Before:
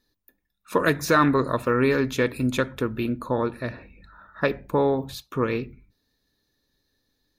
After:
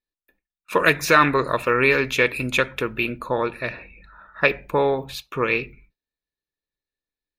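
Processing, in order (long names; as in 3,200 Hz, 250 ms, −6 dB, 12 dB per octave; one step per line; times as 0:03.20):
noise gate with hold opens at −44 dBFS
graphic EQ with 15 bands 100 Hz −10 dB, 250 Hz −8 dB, 2,500 Hz +12 dB
one half of a high-frequency compander decoder only
level +3 dB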